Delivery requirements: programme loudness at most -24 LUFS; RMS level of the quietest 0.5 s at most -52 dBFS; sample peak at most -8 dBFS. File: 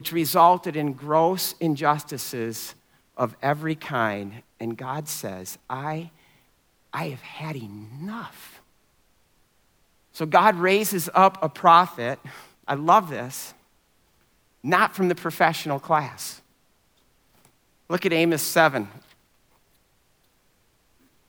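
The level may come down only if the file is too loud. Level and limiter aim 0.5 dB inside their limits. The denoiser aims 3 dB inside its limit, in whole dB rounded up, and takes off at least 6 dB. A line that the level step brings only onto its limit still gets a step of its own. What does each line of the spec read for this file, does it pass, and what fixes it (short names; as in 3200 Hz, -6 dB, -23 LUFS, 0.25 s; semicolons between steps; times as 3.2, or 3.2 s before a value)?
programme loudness -23.0 LUFS: fail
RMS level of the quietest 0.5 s -64 dBFS: OK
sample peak -2.5 dBFS: fail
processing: gain -1.5 dB; limiter -8.5 dBFS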